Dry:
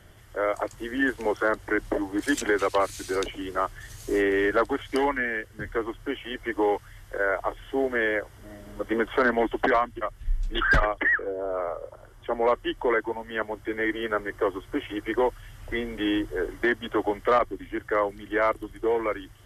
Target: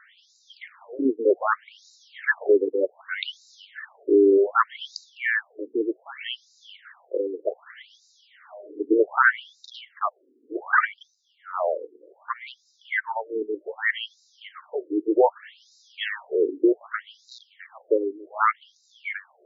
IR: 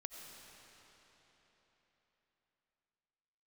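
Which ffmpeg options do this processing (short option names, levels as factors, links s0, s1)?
-af "highpass=130,lowpass=7200,afftfilt=real='re*between(b*sr/1024,330*pow(5300/330,0.5+0.5*sin(2*PI*0.65*pts/sr))/1.41,330*pow(5300/330,0.5+0.5*sin(2*PI*0.65*pts/sr))*1.41)':imag='im*between(b*sr/1024,330*pow(5300/330,0.5+0.5*sin(2*PI*0.65*pts/sr))/1.41,330*pow(5300/330,0.5+0.5*sin(2*PI*0.65*pts/sr))*1.41)':win_size=1024:overlap=0.75,volume=2.51"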